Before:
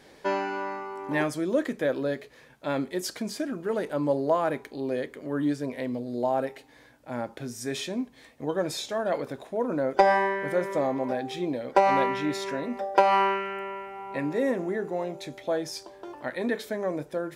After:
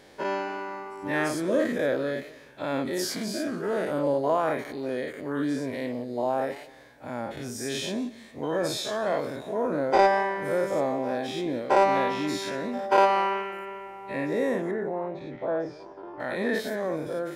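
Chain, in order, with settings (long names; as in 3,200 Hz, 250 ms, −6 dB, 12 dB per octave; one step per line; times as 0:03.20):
every bin's largest magnitude spread in time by 120 ms
0:14.71–0:16.20: low-pass filter 1,500 Hz 12 dB per octave
feedback echo with a swinging delay time 182 ms, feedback 35%, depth 160 cents, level −19.5 dB
level −4 dB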